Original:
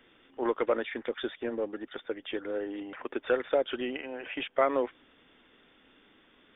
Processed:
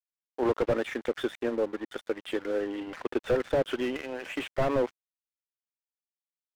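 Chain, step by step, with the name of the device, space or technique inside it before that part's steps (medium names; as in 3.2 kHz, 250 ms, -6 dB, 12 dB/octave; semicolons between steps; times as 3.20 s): 2.87–3.66 s: bass shelf 160 Hz +8.5 dB; early transistor amplifier (crossover distortion -49 dBFS; slew-rate limiter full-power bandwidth 26 Hz); trim +5 dB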